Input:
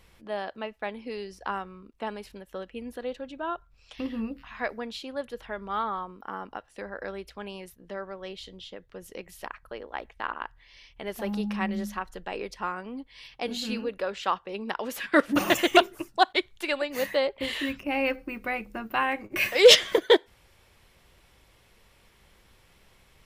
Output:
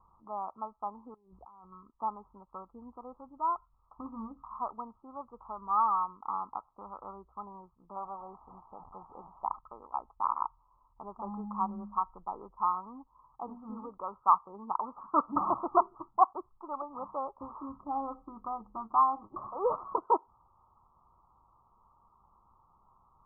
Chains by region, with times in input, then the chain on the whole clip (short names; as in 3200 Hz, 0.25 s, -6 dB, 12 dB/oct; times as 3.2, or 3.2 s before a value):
1.14–1.72 bell 1800 Hz -13.5 dB 2.1 oct + negative-ratio compressor -51 dBFS
7.96–9.6 delta modulation 64 kbps, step -41.5 dBFS + LPF 1200 Hz + bell 780 Hz +9 dB 0.68 oct
whole clip: Chebyshev low-pass 1300 Hz, order 10; resonant low shelf 720 Hz -9 dB, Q 3